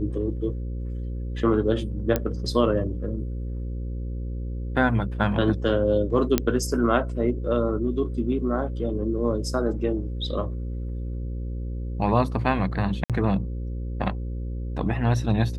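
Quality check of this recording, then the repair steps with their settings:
mains buzz 60 Hz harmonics 9 −30 dBFS
0:02.16: click −9 dBFS
0:06.38: click −5 dBFS
0:13.04–0:13.10: drop-out 57 ms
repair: click removal
hum removal 60 Hz, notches 9
repair the gap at 0:13.04, 57 ms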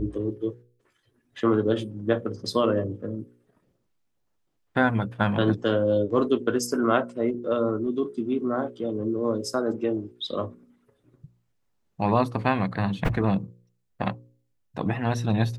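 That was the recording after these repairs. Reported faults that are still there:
none of them is left

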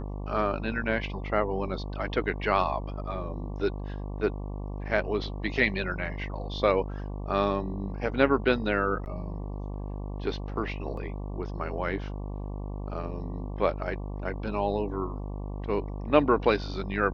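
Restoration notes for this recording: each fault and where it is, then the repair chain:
mains buzz 50 Hz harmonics 23 −35 dBFS
0:09.05–0:09.06: drop-out 9.9 ms
0:10.97: drop-out 3.6 ms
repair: hum removal 50 Hz, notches 23
repair the gap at 0:09.05, 9.9 ms
repair the gap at 0:10.97, 3.6 ms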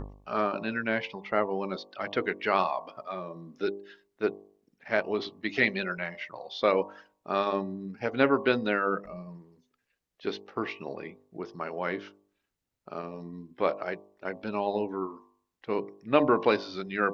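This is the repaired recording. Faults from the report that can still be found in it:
none of them is left

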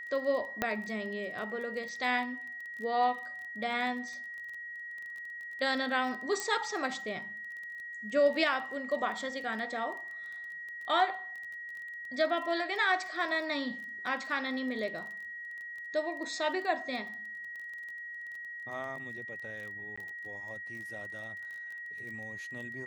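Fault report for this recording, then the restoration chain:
surface crackle 23 per second −40 dBFS
whistle 1,900 Hz −40 dBFS
0:00.62: click −15 dBFS
0:06.40: click −19 dBFS
0:19.96–0:19.98: drop-out 15 ms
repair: click removal
notch filter 1,900 Hz, Q 30
repair the gap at 0:19.96, 15 ms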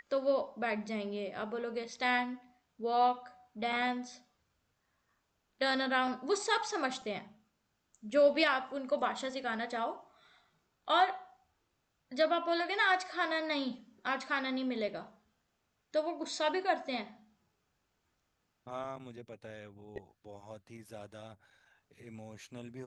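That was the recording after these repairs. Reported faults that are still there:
0:00.62: click

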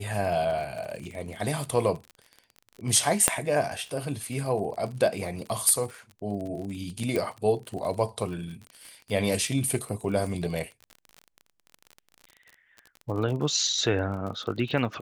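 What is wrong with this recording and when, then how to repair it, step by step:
surface crackle 37 per second −34 dBFS
0:03.28: click −4 dBFS
0:07.16: click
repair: click removal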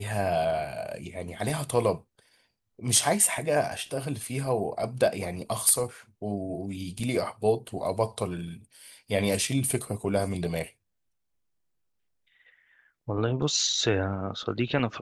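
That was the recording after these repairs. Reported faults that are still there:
none of them is left

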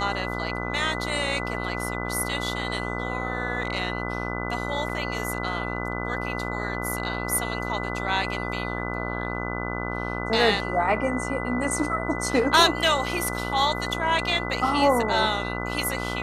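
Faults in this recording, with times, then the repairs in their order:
mains buzz 60 Hz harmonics 25 −31 dBFS
whistle 2,000 Hz −33 dBFS
0:04.89: drop-out 4.7 ms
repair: notch filter 2,000 Hz, Q 30
hum removal 60 Hz, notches 25
repair the gap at 0:04.89, 4.7 ms

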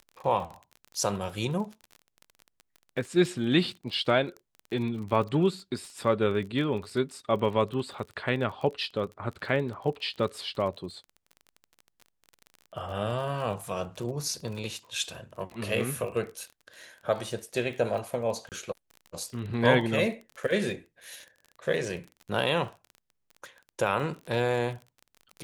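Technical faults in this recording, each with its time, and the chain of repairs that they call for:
surface crackle 28 per second −36 dBFS
0:18.49–0:18.52: drop-out 28 ms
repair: click removal
repair the gap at 0:18.49, 28 ms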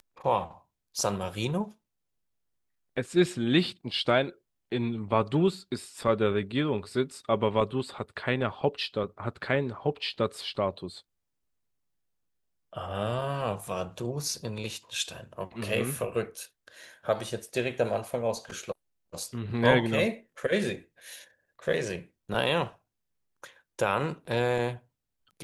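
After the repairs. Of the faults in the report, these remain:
none of them is left

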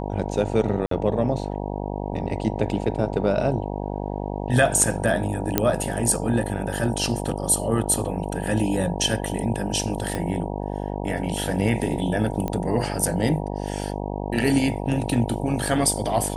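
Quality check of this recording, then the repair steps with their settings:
mains buzz 50 Hz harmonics 19 −29 dBFS
0:00.86–0:00.91: drop-out 53 ms
0:05.58: click −3 dBFS
0:10.15: click −13 dBFS
0:12.48: click −14 dBFS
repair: click removal
hum removal 50 Hz, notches 19
repair the gap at 0:00.86, 53 ms

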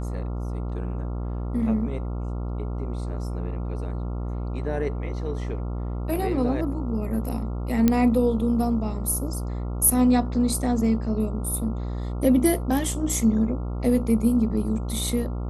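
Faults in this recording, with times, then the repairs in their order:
mains buzz 60 Hz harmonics 23 −29 dBFS
0:07.88: click −7 dBFS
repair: click removal
hum removal 60 Hz, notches 23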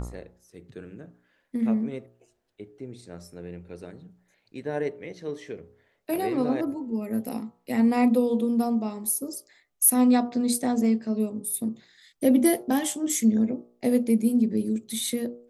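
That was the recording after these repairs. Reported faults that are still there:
none of them is left

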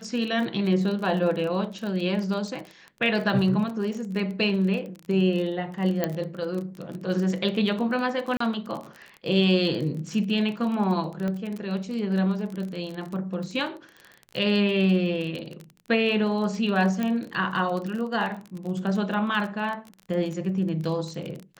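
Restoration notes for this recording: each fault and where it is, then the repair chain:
surface crackle 29 per second −31 dBFS
0:06.04: click −11 dBFS
0:08.37–0:08.40: drop-out 34 ms
0:11.28: click −19 dBFS
0:17.03: click −15 dBFS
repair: click removal
repair the gap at 0:08.37, 34 ms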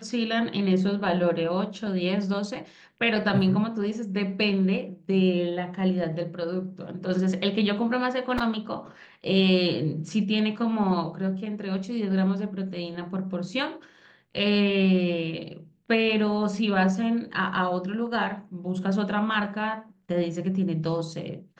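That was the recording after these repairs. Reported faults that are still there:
none of them is left

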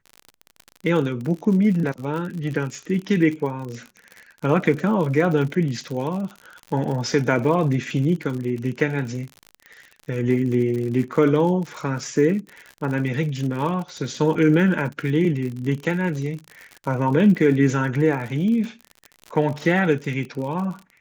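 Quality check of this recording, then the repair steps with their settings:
surface crackle 57 per second −29 dBFS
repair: click removal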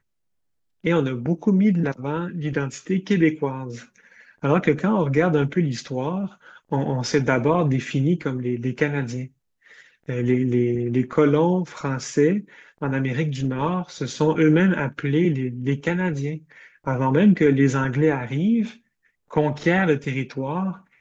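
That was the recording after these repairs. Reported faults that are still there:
none of them is left

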